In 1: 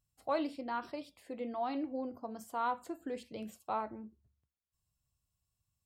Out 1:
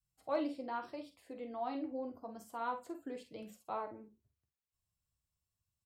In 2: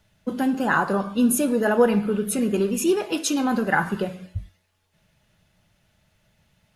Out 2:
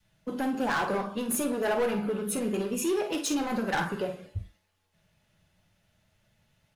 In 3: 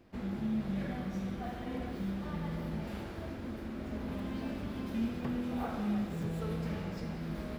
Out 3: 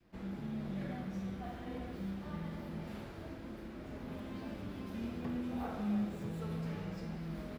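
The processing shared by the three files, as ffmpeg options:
-filter_complex "[0:a]adynamicequalizer=threshold=0.0158:dfrequency=510:dqfactor=0.82:tfrequency=510:tqfactor=0.82:attack=5:release=100:ratio=0.375:range=2.5:mode=boostabove:tftype=bell,acrossover=split=670[s0][s1];[s0]alimiter=limit=0.126:level=0:latency=1:release=218[s2];[s2][s1]amix=inputs=2:normalize=0,asoftclip=type=hard:threshold=0.106,flanger=delay=5.5:depth=6.8:regen=-51:speed=0.28:shape=triangular,aecho=1:1:48|62:0.316|0.126,volume=0.891"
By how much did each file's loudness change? -3.0 LU, -7.0 LU, -4.0 LU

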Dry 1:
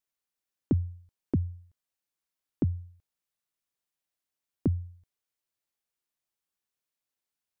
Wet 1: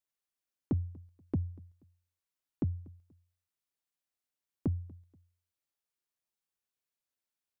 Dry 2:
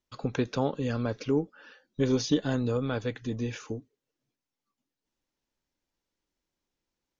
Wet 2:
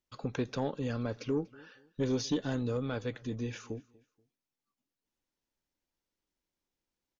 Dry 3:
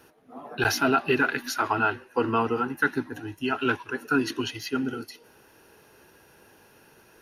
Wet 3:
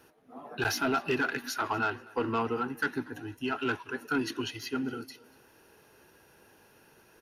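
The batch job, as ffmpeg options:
-af "asoftclip=type=tanh:threshold=0.141,aecho=1:1:240|480:0.0631|0.0202,volume=0.631"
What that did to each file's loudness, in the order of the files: -5.0 LU, -5.0 LU, -5.5 LU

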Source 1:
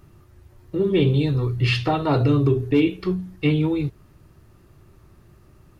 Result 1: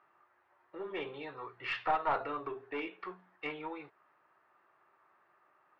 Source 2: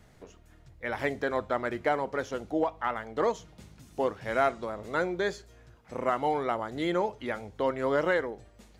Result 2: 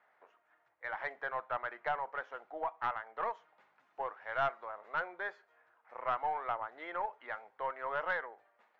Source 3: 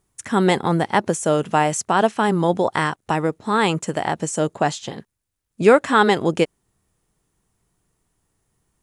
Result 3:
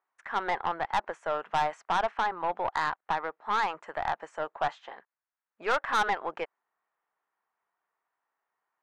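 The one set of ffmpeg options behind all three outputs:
-af "asuperpass=centerf=1200:order=4:qfactor=0.98,aeval=exprs='(tanh(7.94*val(0)+0.3)-tanh(0.3))/7.94':c=same,volume=0.794"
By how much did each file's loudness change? -17.0 LU, -8.0 LU, -11.0 LU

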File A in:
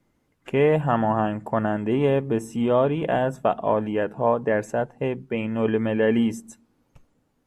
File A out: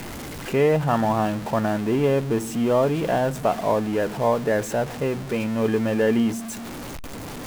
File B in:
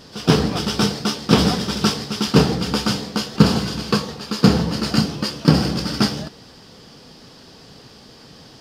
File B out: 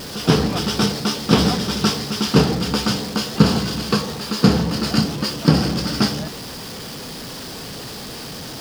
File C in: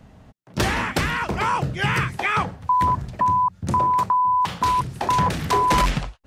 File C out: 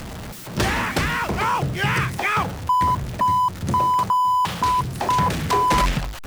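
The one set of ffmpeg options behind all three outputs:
-af "aeval=exprs='val(0)+0.5*0.0422*sgn(val(0))':c=same,volume=0.891"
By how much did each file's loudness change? +0.5 LU, 0.0 LU, +0.5 LU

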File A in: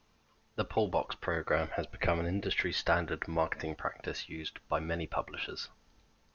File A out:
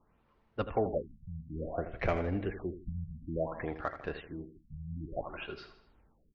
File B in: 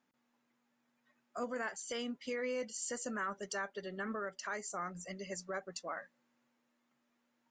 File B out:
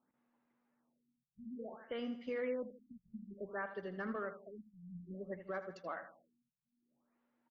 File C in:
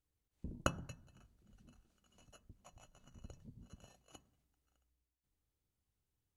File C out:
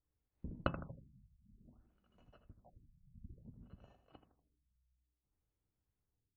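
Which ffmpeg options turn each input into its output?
-af "aemphasis=mode=reproduction:type=75fm,adynamicsmooth=sensitivity=6:basefreq=3400,aecho=1:1:80|160|240|320|400:0.282|0.13|0.0596|0.0274|0.0126,afftfilt=real='re*lt(b*sr/1024,200*pow(7800/200,0.5+0.5*sin(2*PI*0.57*pts/sr)))':imag='im*lt(b*sr/1024,200*pow(7800/200,0.5+0.5*sin(2*PI*0.57*pts/sr)))':win_size=1024:overlap=0.75,volume=0.891"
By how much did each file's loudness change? -3.5 LU, -3.5 LU, -1.0 LU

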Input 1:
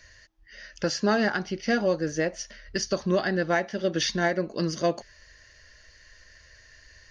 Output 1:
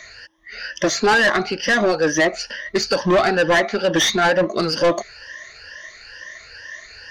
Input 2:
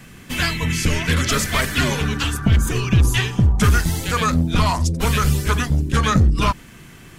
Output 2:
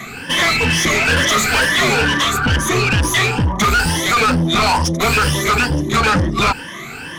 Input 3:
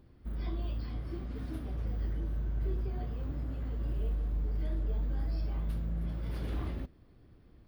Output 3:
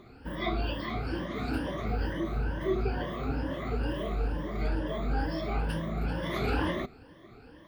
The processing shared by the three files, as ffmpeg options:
-filter_complex "[0:a]afftfilt=real='re*pow(10,16/40*sin(2*PI*(1.2*log(max(b,1)*sr/1024/100)/log(2)-(2.2)*(pts-256)/sr)))':imag='im*pow(10,16/40*sin(2*PI*(1.2*log(max(b,1)*sr/1024/100)/log(2)-(2.2)*(pts-256)/sr)))':win_size=1024:overlap=0.75,asplit=2[s0][s1];[s1]highpass=f=720:p=1,volume=12.6,asoftclip=type=tanh:threshold=0.841[s2];[s0][s2]amix=inputs=2:normalize=0,lowpass=f=2700:p=1,volume=0.501,asoftclip=type=tanh:threshold=0.299"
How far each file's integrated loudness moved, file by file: +9.0 LU, +4.0 LU, +4.0 LU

